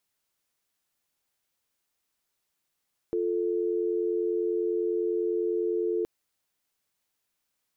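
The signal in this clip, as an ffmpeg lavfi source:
ffmpeg -f lavfi -i "aevalsrc='0.0422*(sin(2*PI*350*t)+sin(2*PI*440*t))':duration=2.92:sample_rate=44100" out.wav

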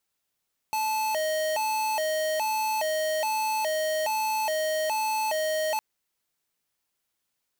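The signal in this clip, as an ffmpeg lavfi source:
ffmpeg -f lavfi -i "aevalsrc='0.0447*(2*lt(mod((747.5*t+122.5/1.2*(0.5-abs(mod(1.2*t,1)-0.5))),1),0.5)-1)':duration=5.06:sample_rate=44100" out.wav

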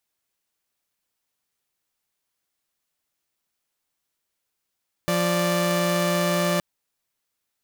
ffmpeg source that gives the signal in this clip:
ffmpeg -f lavfi -i "aevalsrc='0.0944*((2*mod(174.61*t,1)-1)+(2*mod(587.33*t,1)-1))':duration=1.52:sample_rate=44100" out.wav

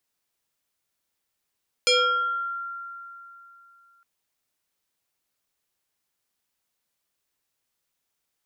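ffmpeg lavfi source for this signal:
ffmpeg -f lavfi -i "aevalsrc='0.168*pow(10,-3*t/3.04)*sin(2*PI*1380*t+3.1*pow(10,-3*t/0.86)*sin(2*PI*1.36*1380*t))':duration=2.16:sample_rate=44100" out.wav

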